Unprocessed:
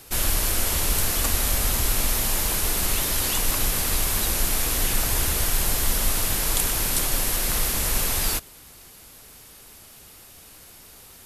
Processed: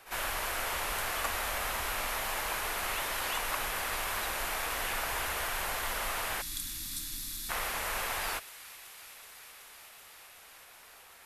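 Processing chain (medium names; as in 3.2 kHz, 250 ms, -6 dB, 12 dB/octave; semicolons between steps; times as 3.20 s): three-band isolator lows -19 dB, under 570 Hz, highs -15 dB, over 2.6 kHz; pre-echo 51 ms -14.5 dB; spectral selection erased 6.42–7.50 s, 340–3300 Hz; on a send: feedback echo behind a high-pass 377 ms, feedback 85%, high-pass 2.2 kHz, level -16 dB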